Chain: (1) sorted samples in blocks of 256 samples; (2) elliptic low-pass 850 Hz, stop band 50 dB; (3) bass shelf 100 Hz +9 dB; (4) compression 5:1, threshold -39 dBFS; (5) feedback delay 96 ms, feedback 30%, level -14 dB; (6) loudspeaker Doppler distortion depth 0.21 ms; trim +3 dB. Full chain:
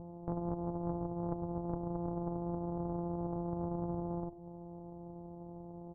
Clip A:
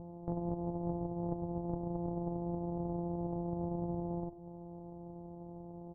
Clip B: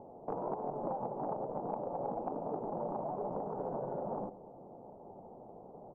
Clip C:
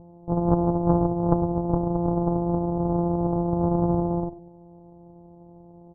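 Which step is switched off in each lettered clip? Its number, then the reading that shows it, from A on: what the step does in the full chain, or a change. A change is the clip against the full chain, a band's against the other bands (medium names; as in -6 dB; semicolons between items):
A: 6, 1 kHz band -1.5 dB; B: 1, crest factor change +1.5 dB; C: 4, mean gain reduction 9.5 dB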